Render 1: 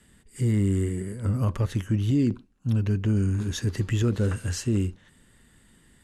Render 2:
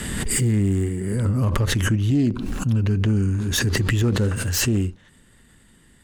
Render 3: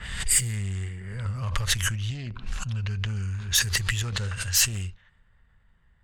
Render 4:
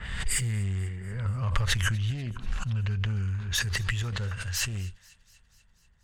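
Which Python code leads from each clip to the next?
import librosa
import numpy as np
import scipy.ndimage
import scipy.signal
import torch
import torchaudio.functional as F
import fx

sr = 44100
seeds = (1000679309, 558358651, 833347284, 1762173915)

y1 = fx.self_delay(x, sr, depth_ms=0.092)
y1 = fx.pre_swell(y1, sr, db_per_s=29.0)
y1 = F.gain(torch.from_numpy(y1), 3.0).numpy()
y2 = fx.tone_stack(y1, sr, knobs='10-0-10')
y2 = fx.env_lowpass(y2, sr, base_hz=1000.0, full_db=-25.0)
y2 = F.gain(torch.from_numpy(y2), 3.5).numpy()
y3 = fx.high_shelf(y2, sr, hz=4000.0, db=-11.5)
y3 = fx.rider(y3, sr, range_db=10, speed_s=2.0)
y3 = fx.echo_wet_highpass(y3, sr, ms=243, feedback_pct=64, hz=2100.0, wet_db=-22.5)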